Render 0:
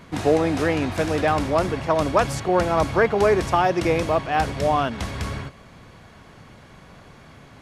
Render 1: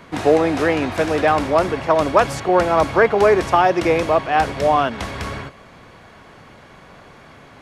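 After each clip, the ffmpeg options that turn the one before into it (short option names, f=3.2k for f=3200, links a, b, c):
-filter_complex "[0:a]bass=f=250:g=-7,treble=f=4k:g=-12,acrossover=split=540|4600[a][b][c];[c]acontrast=84[d];[a][b][d]amix=inputs=3:normalize=0,volume=5dB"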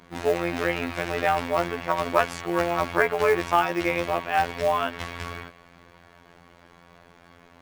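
-af "afftfilt=real='hypot(re,im)*cos(PI*b)':imag='0':win_size=2048:overlap=0.75,adynamicequalizer=threshold=0.0178:dfrequency=2300:dqfactor=0.82:tfrequency=2300:tqfactor=0.82:attack=5:release=100:ratio=0.375:range=3:mode=boostabove:tftype=bell,acrusher=bits=6:mode=log:mix=0:aa=0.000001,volume=-5.5dB"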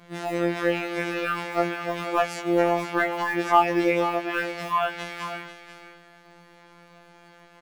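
-af "acontrast=55,aecho=1:1:491:0.282,afftfilt=real='re*2.83*eq(mod(b,8),0)':imag='im*2.83*eq(mod(b,8),0)':win_size=2048:overlap=0.75,volume=-8dB"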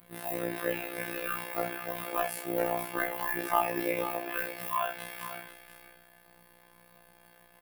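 -filter_complex "[0:a]tremolo=f=62:d=0.75,aexciter=amount=15.3:drive=3.2:freq=9.5k,asplit=2[a][b];[b]aecho=0:1:33|65:0.422|0.316[c];[a][c]amix=inputs=2:normalize=0,volume=-6dB"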